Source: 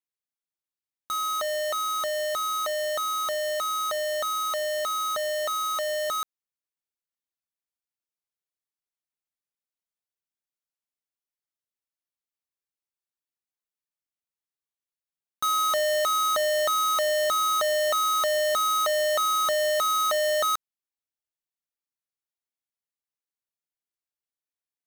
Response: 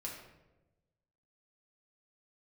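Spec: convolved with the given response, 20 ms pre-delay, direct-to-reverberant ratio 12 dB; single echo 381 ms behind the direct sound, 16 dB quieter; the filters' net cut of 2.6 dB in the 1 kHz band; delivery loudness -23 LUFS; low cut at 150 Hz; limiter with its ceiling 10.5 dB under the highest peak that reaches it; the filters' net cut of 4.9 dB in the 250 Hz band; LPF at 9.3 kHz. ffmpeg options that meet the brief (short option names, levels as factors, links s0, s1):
-filter_complex "[0:a]highpass=150,lowpass=9300,equalizer=f=250:t=o:g=-8,equalizer=f=1000:t=o:g=-3.5,alimiter=level_in=2:limit=0.0631:level=0:latency=1,volume=0.501,aecho=1:1:381:0.158,asplit=2[s0][s1];[1:a]atrim=start_sample=2205,adelay=20[s2];[s1][s2]afir=irnorm=-1:irlink=0,volume=0.282[s3];[s0][s3]amix=inputs=2:normalize=0,volume=4.22"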